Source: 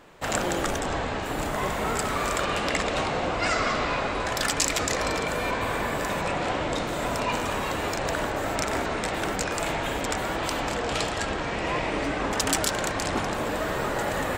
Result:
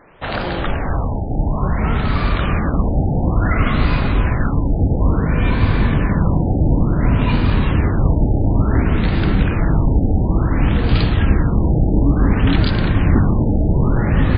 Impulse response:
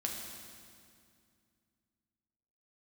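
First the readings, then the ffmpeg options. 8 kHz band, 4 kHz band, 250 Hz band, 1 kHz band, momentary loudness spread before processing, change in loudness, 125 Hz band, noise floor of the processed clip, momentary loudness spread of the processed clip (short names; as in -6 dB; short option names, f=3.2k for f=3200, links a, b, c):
under -40 dB, -1.0 dB, +13.5 dB, +1.0 dB, 4 LU, +9.5 dB, +21.0 dB, -21 dBFS, 4 LU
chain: -af "asubboost=boost=10.5:cutoff=190,afftfilt=real='re*lt(b*sr/1024,860*pow(5000/860,0.5+0.5*sin(2*PI*0.57*pts/sr)))':imag='im*lt(b*sr/1024,860*pow(5000/860,0.5+0.5*sin(2*PI*0.57*pts/sr)))':win_size=1024:overlap=0.75,volume=4.5dB"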